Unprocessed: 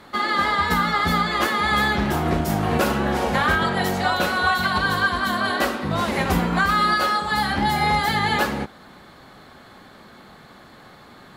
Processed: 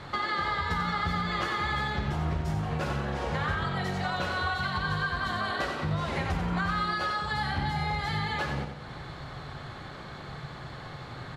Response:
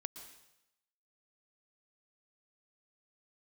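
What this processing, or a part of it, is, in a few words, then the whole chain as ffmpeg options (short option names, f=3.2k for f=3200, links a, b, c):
jukebox: -af "lowpass=6.4k,lowshelf=f=170:t=q:w=3:g=6,acompressor=threshold=-33dB:ratio=4,aecho=1:1:91|182|273|364|455|546:0.447|0.214|0.103|0.0494|0.0237|0.0114,volume=2.5dB"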